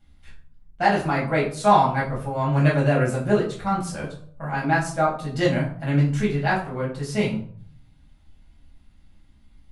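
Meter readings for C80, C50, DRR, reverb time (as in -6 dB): 11.5 dB, 7.5 dB, -6.0 dB, 0.55 s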